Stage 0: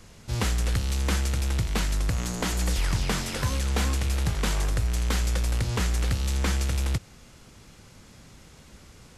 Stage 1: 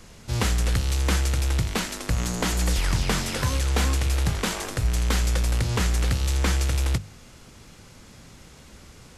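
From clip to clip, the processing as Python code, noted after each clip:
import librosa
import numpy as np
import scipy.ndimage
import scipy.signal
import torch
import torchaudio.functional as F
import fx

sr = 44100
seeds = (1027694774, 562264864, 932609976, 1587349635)

y = fx.hum_notches(x, sr, base_hz=50, count=4)
y = y * librosa.db_to_amplitude(3.0)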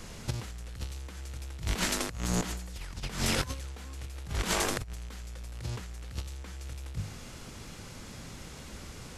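y = fx.over_compress(x, sr, threshold_db=-29.0, ratio=-0.5)
y = y * librosa.db_to_amplitude(-4.5)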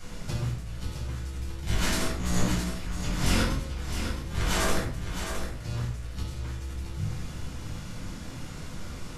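y = x + 10.0 ** (-8.0 / 20.0) * np.pad(x, (int(663 * sr / 1000.0), 0))[:len(x)]
y = fx.room_shoebox(y, sr, seeds[0], volume_m3=820.0, walls='furnished', distance_m=7.6)
y = y * librosa.db_to_amplitude(-7.0)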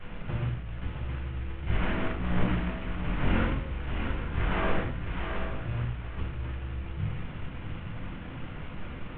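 y = fx.cvsd(x, sr, bps=16000)
y = y + 10.0 ** (-12.0 / 20.0) * np.pad(y, (int(835 * sr / 1000.0), 0))[:len(y)]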